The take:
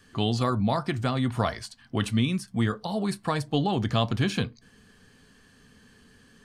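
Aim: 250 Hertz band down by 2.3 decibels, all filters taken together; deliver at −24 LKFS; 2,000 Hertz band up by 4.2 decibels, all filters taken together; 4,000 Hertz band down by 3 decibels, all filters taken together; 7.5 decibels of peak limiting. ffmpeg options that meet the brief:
ffmpeg -i in.wav -af "equalizer=frequency=250:width_type=o:gain=-3,equalizer=frequency=2000:width_type=o:gain=7,equalizer=frequency=4000:width_type=o:gain=-7,volume=5.5dB,alimiter=limit=-11.5dB:level=0:latency=1" out.wav

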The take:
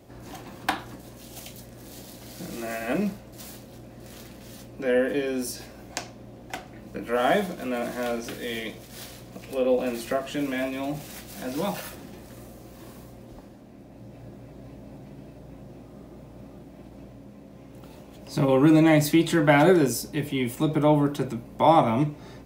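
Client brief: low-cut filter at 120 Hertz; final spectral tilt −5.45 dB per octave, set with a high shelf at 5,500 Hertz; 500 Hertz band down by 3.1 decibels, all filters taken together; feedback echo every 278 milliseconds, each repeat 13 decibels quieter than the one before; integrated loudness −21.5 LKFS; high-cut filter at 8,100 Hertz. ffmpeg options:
ffmpeg -i in.wav -af "highpass=120,lowpass=8100,equalizer=frequency=500:width_type=o:gain=-4,highshelf=frequency=5500:gain=-8.5,aecho=1:1:278|556|834:0.224|0.0493|0.0108,volume=5dB" out.wav

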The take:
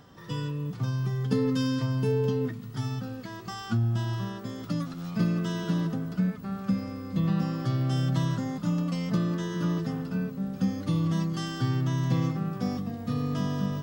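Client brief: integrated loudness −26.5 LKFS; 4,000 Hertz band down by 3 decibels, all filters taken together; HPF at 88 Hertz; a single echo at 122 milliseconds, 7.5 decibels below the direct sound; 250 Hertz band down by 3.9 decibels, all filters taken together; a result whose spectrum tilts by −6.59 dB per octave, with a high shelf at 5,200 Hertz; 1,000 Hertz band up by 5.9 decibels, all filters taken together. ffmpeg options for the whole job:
ffmpeg -i in.wav -af "highpass=88,equalizer=frequency=250:width_type=o:gain=-6,equalizer=frequency=1000:width_type=o:gain=7.5,equalizer=frequency=4000:width_type=o:gain=-8,highshelf=frequency=5200:gain=6.5,aecho=1:1:122:0.422,volume=3.5dB" out.wav

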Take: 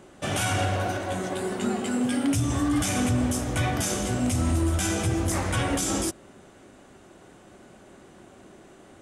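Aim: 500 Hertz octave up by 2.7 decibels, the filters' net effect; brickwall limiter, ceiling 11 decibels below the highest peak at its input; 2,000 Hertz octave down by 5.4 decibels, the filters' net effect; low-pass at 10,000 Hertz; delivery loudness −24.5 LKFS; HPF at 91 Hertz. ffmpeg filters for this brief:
ffmpeg -i in.wav -af "highpass=91,lowpass=10000,equalizer=frequency=500:width_type=o:gain=4,equalizer=frequency=2000:width_type=o:gain=-8,volume=7.5dB,alimiter=limit=-16.5dB:level=0:latency=1" out.wav

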